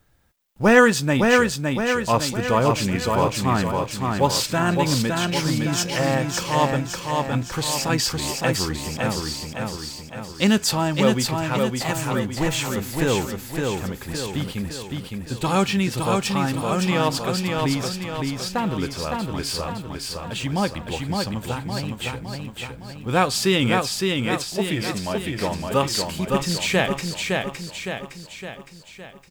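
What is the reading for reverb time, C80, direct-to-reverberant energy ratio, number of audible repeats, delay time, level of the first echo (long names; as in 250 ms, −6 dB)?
no reverb audible, no reverb audible, no reverb audible, 6, 562 ms, −3.5 dB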